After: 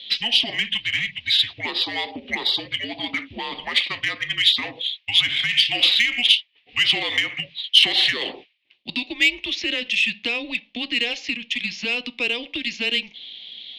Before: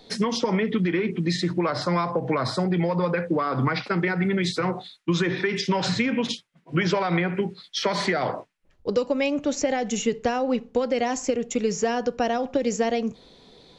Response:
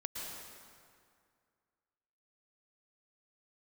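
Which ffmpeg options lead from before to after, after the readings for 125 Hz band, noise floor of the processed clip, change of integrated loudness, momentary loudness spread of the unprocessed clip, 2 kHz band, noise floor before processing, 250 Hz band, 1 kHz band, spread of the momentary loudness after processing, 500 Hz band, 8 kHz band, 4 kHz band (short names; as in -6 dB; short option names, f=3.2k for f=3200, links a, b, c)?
-16.0 dB, -59 dBFS, +4.5 dB, 4 LU, +8.0 dB, -59 dBFS, -10.5 dB, -8.5 dB, 12 LU, -12.5 dB, -4.0 dB, +16.0 dB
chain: -af "highpass=f=500:t=q:w=0.5412,highpass=f=500:t=q:w=1.307,lowpass=f=3.4k:t=q:w=0.5176,lowpass=f=3.4k:t=q:w=0.7071,lowpass=f=3.4k:t=q:w=1.932,afreqshift=-240,aexciter=amount=14.8:drive=9.8:freq=2.4k,volume=-6dB"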